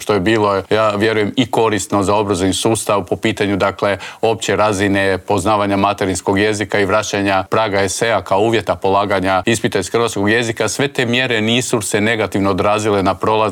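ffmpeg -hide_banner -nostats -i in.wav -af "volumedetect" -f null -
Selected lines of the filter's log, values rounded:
mean_volume: -15.4 dB
max_volume: -3.5 dB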